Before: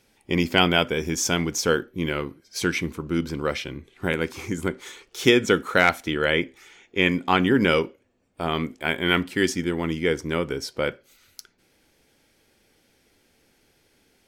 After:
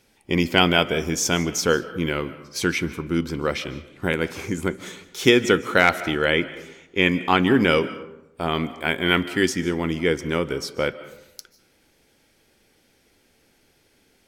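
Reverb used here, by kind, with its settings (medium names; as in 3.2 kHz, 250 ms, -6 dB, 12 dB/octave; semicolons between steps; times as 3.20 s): algorithmic reverb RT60 0.88 s, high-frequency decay 0.5×, pre-delay 110 ms, DRR 15 dB; trim +1.5 dB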